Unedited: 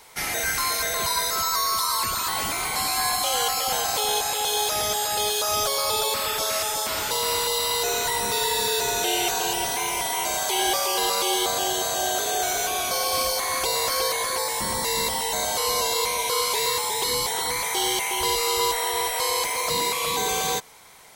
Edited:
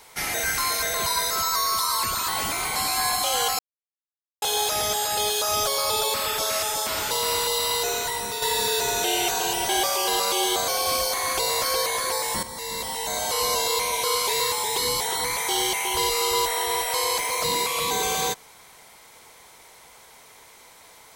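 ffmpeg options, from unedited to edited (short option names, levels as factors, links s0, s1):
-filter_complex "[0:a]asplit=7[s0][s1][s2][s3][s4][s5][s6];[s0]atrim=end=3.59,asetpts=PTS-STARTPTS,afade=t=out:st=3.586:d=0.004:c=hsin[s7];[s1]atrim=start=3.59:end=4.42,asetpts=PTS-STARTPTS,volume=0[s8];[s2]atrim=start=4.42:end=8.42,asetpts=PTS-STARTPTS,afade=t=in:d=0.004:c=hsin,afade=t=out:st=3.31:d=0.69:silence=0.473151[s9];[s3]atrim=start=8.42:end=9.692,asetpts=PTS-STARTPTS,afade=t=in:d=0.004:c=hsin:silence=0.473151[s10];[s4]atrim=start=10.588:end=11.582[s11];[s5]atrim=start=12.938:end=14.69,asetpts=PTS-STARTPTS,afade=t=out:st=1.748:d=0.004:c=hsin:silence=0.251189[s12];[s6]atrim=start=14.69,asetpts=PTS-STARTPTS,afade=t=in:d=0.98:silence=0.251189[s13];[s7][s8][s9][s10]concat=n=4:v=0:a=1[s14];[s14][s11]acrossfade=d=0.004:c1=hsin:c2=hsin[s15];[s12][s13]concat=n=2:v=0:a=1[s16];[s15][s16]acrossfade=d=0.004:c1=hsin:c2=hsin"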